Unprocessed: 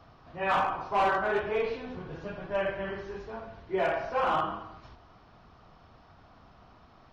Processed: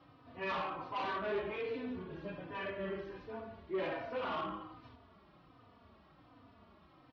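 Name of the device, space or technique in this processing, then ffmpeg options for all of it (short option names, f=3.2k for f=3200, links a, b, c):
barber-pole flanger into a guitar amplifier: -filter_complex "[0:a]asplit=2[a][b];[b]adelay=3.3,afreqshift=-1.3[c];[a][c]amix=inputs=2:normalize=1,asoftclip=type=tanh:threshold=-30dB,highpass=75,equalizer=f=140:t=q:w=4:g=-4,equalizer=f=280:t=q:w=4:g=6,equalizer=f=780:t=q:w=4:g=-6,equalizer=f=1.5k:t=q:w=4:g=-4,lowpass=f=4.3k:w=0.5412,lowpass=f=4.3k:w=1.3066,volume=-1dB"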